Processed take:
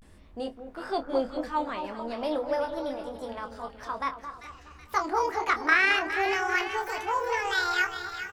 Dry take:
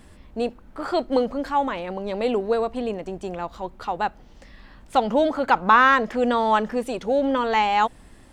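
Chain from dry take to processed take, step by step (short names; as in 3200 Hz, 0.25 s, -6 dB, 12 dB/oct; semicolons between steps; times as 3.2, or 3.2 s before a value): gliding pitch shift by +11 st starting unshifted; on a send: split-band echo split 1600 Hz, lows 0.216 s, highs 0.39 s, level -9 dB; on the sum: vibrato 0.47 Hz 89 cents; doubler 26 ms -9 dB; gain -6.5 dB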